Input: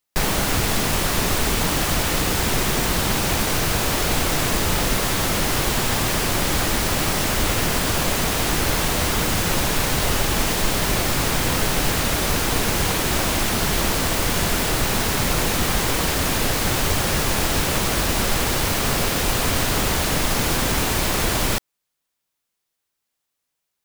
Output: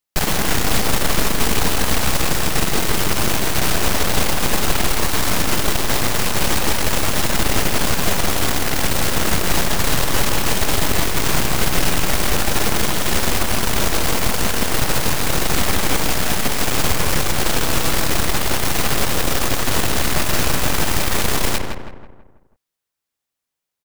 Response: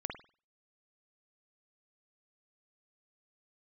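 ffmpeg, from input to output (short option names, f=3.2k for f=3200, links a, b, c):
-filter_complex "[0:a]aeval=exprs='0.562*(cos(1*acos(clip(val(0)/0.562,-1,1)))-cos(1*PI/2))+0.178*(cos(8*acos(clip(val(0)/0.562,-1,1)))-cos(8*PI/2))':c=same,asplit=2[a][b];[b]adelay=163,lowpass=f=2k:p=1,volume=-3.5dB,asplit=2[c][d];[d]adelay=163,lowpass=f=2k:p=1,volume=0.49,asplit=2[e][f];[f]adelay=163,lowpass=f=2k:p=1,volume=0.49,asplit=2[g][h];[h]adelay=163,lowpass=f=2k:p=1,volume=0.49,asplit=2[i][j];[j]adelay=163,lowpass=f=2k:p=1,volume=0.49,asplit=2[k][l];[l]adelay=163,lowpass=f=2k:p=1,volume=0.49[m];[c][e][g][i][k][m]amix=inputs=6:normalize=0[n];[a][n]amix=inputs=2:normalize=0,volume=-4dB"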